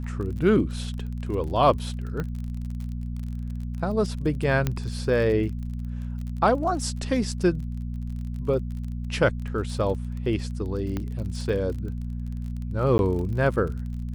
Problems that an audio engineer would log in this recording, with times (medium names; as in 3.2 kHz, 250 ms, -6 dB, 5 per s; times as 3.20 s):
crackle 31 per s -34 dBFS
hum 60 Hz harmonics 4 -31 dBFS
2.20 s: pop -18 dBFS
4.67 s: pop -11 dBFS
10.97 s: pop -17 dBFS
12.98–12.99 s: dropout 11 ms